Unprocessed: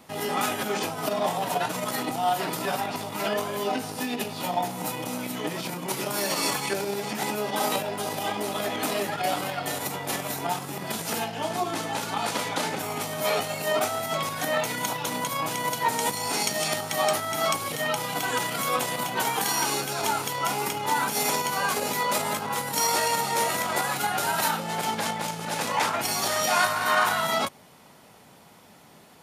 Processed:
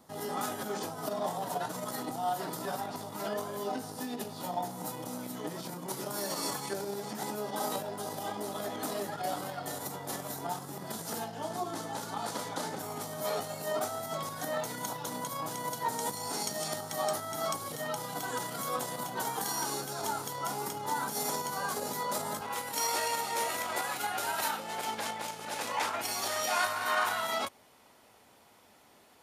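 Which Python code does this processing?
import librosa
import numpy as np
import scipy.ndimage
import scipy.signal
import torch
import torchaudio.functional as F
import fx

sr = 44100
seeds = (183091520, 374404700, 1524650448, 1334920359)

y = fx.peak_eq(x, sr, hz=fx.steps((0.0, 2500.0), (22.41, 160.0)), db=-12.0, octaves=0.68)
y = F.gain(torch.from_numpy(y), -7.0).numpy()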